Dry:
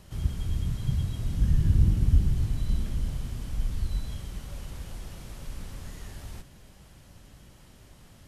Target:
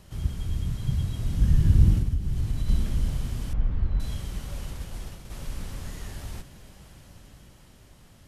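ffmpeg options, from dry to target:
ffmpeg -i in.wav -filter_complex "[0:a]asettb=1/sr,asplit=3[link_01][link_02][link_03];[link_01]atrim=end=1.984[link_04];[link_02]atrim=start=1.98:end=2.68,asetpts=PTS-STARTPTS,afade=type=in:duration=0.004:curve=qsin,afade=type=out:start_time=0.696:duration=0.004:curve=qsin,acompressor=threshold=-25dB:ratio=10[link_05];[link_03]atrim=start=2.676[link_06];[link_04][link_05]acrossfade=duration=0.004:curve1=hsin:curve2=qsin[link_07];[link_07][link_06]acrossfade=duration=0.004:curve1=qsin:curve2=hsin,asettb=1/sr,asplit=3[link_08][link_09][link_10];[link_08]atrim=end=3.534[link_11];[link_09]atrim=start=3.53:end=4,asetpts=PTS-STARTPTS,afade=type=in:duration=0.004:curve=qsin,afade=type=out:start_time=0.466:duration=0.004:curve=qsin,lowpass=1700[link_12];[link_10]atrim=start=3.996[link_13];[link_11][link_12]acrossfade=duration=0.004:curve1=hsin:curve2=qsin[link_14];[link_14][link_13]acrossfade=duration=0.004:curve1=qsin:curve2=hsin,asplit=3[link_15][link_16][link_17];[link_15]afade=type=out:start_time=4.71:duration=0.02[link_18];[link_16]agate=range=-33dB:threshold=-35dB:ratio=3:detection=peak,afade=type=in:start_time=4.71:duration=0.02,afade=type=out:start_time=5.3:duration=0.02[link_19];[link_17]afade=type=in:start_time=5.3:duration=0.02[link_20];[link_18][link_19][link_20]amix=inputs=3:normalize=0,dynaudnorm=framelen=230:gausssize=11:maxgain=4dB" out.wav

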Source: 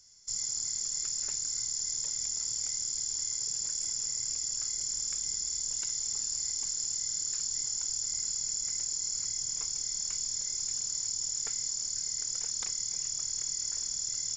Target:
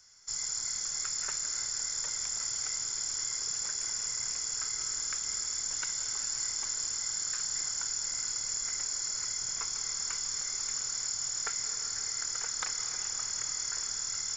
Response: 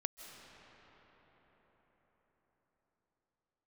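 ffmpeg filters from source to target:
-filter_complex "[0:a]equalizer=frequency=1400:width=1.6:gain=9.5,acrossover=split=400|3400[link_01][link_02][link_03];[link_02]acontrast=79[link_04];[link_01][link_04][link_03]amix=inputs=3:normalize=0[link_05];[1:a]atrim=start_sample=2205[link_06];[link_05][link_06]afir=irnorm=-1:irlink=0"

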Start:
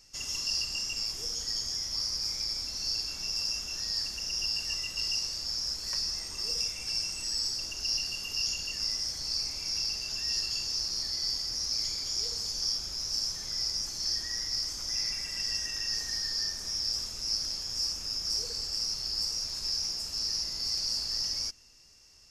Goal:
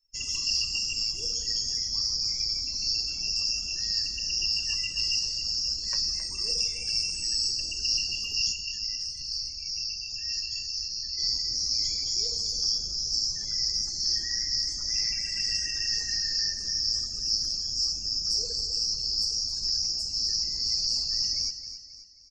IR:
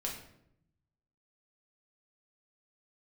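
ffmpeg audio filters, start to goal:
-filter_complex "[0:a]asplit=3[link_01][link_02][link_03];[link_01]afade=type=out:start_time=8.51:duration=0.02[link_04];[link_02]flanger=delay=8.9:depth=3.7:regen=-87:speed=1.7:shape=triangular,afade=type=in:start_time=8.51:duration=0.02,afade=type=out:start_time=11.17:duration=0.02[link_05];[link_03]afade=type=in:start_time=11.17:duration=0.02[link_06];[link_04][link_05][link_06]amix=inputs=3:normalize=0,afftdn=noise_reduction=34:noise_floor=-46,aecho=1:1:267|534|801|1068:0.266|0.112|0.0469|0.0197,volume=4dB"

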